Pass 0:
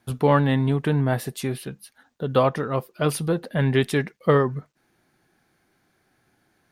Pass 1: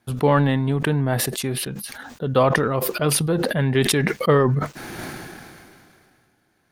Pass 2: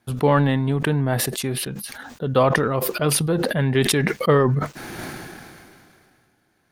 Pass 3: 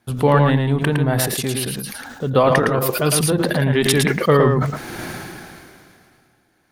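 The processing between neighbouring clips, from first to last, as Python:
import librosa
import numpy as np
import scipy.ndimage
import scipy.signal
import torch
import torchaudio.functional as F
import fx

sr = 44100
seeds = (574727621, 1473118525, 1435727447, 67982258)

y1 = fx.transient(x, sr, attack_db=1, sustain_db=-8)
y1 = fx.sustainer(y1, sr, db_per_s=25.0)
y2 = y1
y3 = y2 + 10.0 ** (-4.5 / 20.0) * np.pad(y2, (int(111 * sr / 1000.0), 0))[:len(y2)]
y3 = F.gain(torch.from_numpy(y3), 2.0).numpy()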